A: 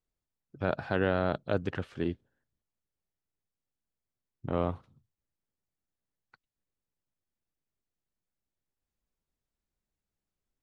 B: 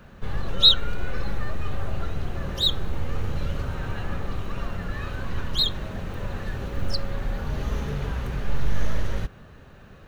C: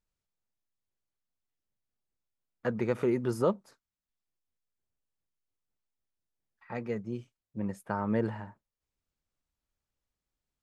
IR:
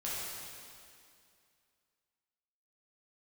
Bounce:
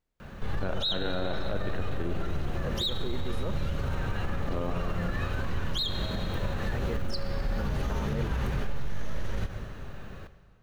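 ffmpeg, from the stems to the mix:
-filter_complex "[0:a]lowpass=3200,volume=3dB,asplit=2[link_01][link_02];[link_02]volume=-5dB[link_03];[1:a]adelay=200,volume=2.5dB,asplit=2[link_04][link_05];[link_05]volume=-14.5dB[link_06];[2:a]volume=-2dB,asplit=2[link_07][link_08];[link_08]apad=whole_len=468517[link_09];[link_01][link_09]sidechaincompress=threshold=-44dB:ratio=8:attack=16:release=1070[link_10];[3:a]atrim=start_sample=2205[link_11];[link_03][link_06]amix=inputs=2:normalize=0[link_12];[link_12][link_11]afir=irnorm=-1:irlink=0[link_13];[link_10][link_04][link_07][link_13]amix=inputs=4:normalize=0,alimiter=limit=-21dB:level=0:latency=1:release=94"

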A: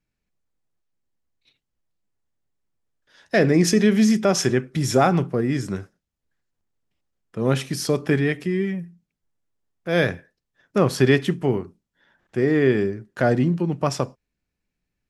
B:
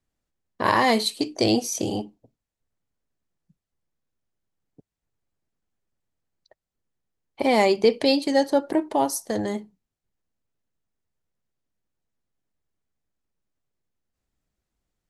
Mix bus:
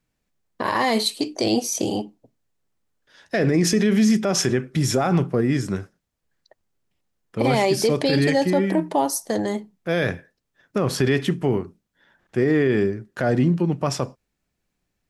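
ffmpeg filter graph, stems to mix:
ffmpeg -i stem1.wav -i stem2.wav -filter_complex "[0:a]volume=2dB[link_01];[1:a]highpass=120,volume=3dB[link_02];[link_01][link_02]amix=inputs=2:normalize=0,alimiter=limit=-10.5dB:level=0:latency=1:release=31" out.wav

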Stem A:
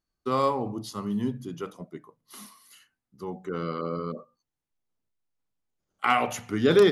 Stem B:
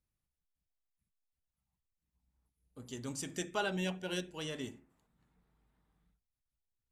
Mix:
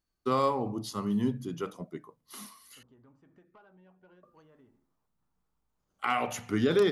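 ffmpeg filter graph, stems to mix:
ffmpeg -i stem1.wav -i stem2.wav -filter_complex "[0:a]volume=0dB,asplit=3[link_01][link_02][link_03];[link_01]atrim=end=2.83,asetpts=PTS-STARTPTS,afade=type=out:start_time=2.826:duration=0.004:curve=hsin[link_04];[link_02]atrim=start=2.83:end=4.23,asetpts=PTS-STARTPTS,volume=0[link_05];[link_03]atrim=start=4.23,asetpts=PTS-STARTPTS,afade=type=in:duration=0.004:curve=hsin[link_06];[link_04][link_05][link_06]concat=n=3:v=0:a=1[link_07];[1:a]acompressor=threshold=-45dB:ratio=16,lowpass=frequency=1200:width_type=q:width=1.9,asoftclip=type=tanh:threshold=-40dB,volume=-10dB[link_08];[link_07][link_08]amix=inputs=2:normalize=0,alimiter=limit=-16dB:level=0:latency=1:release=455" out.wav

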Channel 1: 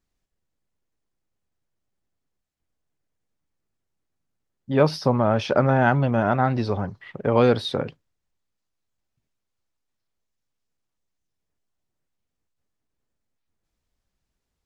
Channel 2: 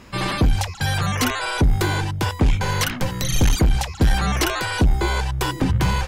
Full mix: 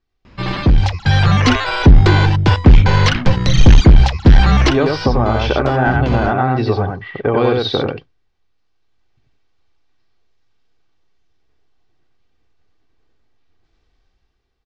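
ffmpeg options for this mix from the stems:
ffmpeg -i stem1.wav -i stem2.wav -filter_complex "[0:a]aecho=1:1:2.6:0.43,acompressor=threshold=-20dB:ratio=6,volume=3dB,asplit=3[link_01][link_02][link_03];[link_02]volume=-3dB[link_04];[1:a]lowshelf=frequency=210:gain=6.5,aeval=exprs='0.355*(cos(1*acos(clip(val(0)/0.355,-1,1)))-cos(1*PI/2))+0.0158*(cos(7*acos(clip(val(0)/0.355,-1,1)))-cos(7*PI/2))':channel_layout=same,adelay=250,volume=0dB[link_05];[link_03]apad=whole_len=278816[link_06];[link_05][link_06]sidechaincompress=threshold=-26dB:ratio=8:attack=16:release=549[link_07];[link_04]aecho=0:1:92:1[link_08];[link_01][link_07][link_08]amix=inputs=3:normalize=0,lowpass=frequency=5000:width=0.5412,lowpass=frequency=5000:width=1.3066,dynaudnorm=framelen=270:gausssize=7:maxgain=11dB" out.wav

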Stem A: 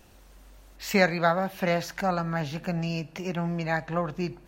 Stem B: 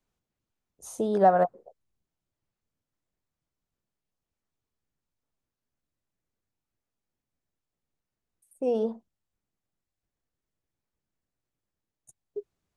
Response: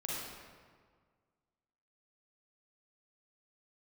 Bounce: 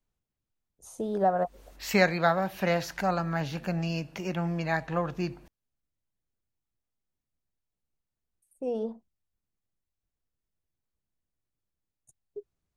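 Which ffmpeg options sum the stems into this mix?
-filter_complex "[0:a]adelay=1000,volume=-1dB[link_01];[1:a]lowshelf=frequency=110:gain=9,volume=-5.5dB,asplit=2[link_02][link_03];[link_03]apad=whole_len=241593[link_04];[link_01][link_04]sidechaincompress=threshold=-35dB:ratio=8:attack=16:release=201[link_05];[link_05][link_02]amix=inputs=2:normalize=0"

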